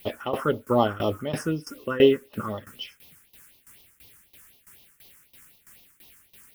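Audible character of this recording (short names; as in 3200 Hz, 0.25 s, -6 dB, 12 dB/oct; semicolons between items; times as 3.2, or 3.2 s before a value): a quantiser's noise floor 10-bit, dither triangular; tremolo saw down 3 Hz, depth 90%; phasing stages 4, 4 Hz, lowest notch 610–1500 Hz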